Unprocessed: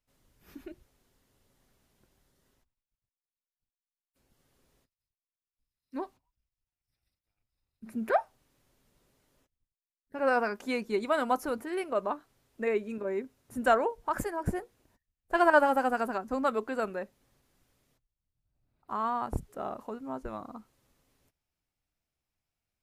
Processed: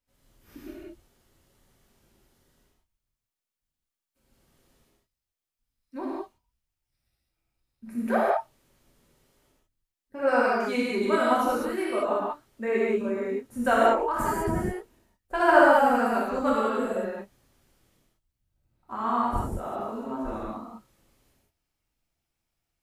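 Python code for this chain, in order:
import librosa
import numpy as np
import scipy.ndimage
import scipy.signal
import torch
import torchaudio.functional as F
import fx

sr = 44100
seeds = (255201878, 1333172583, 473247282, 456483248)

y = fx.rev_gated(x, sr, seeds[0], gate_ms=230, shape='flat', drr_db=-7.5)
y = fx.spec_repair(y, sr, seeds[1], start_s=16.72, length_s=0.38, low_hz=670.0, high_hz=6100.0, source='both')
y = y * 10.0 ** (-3.0 / 20.0)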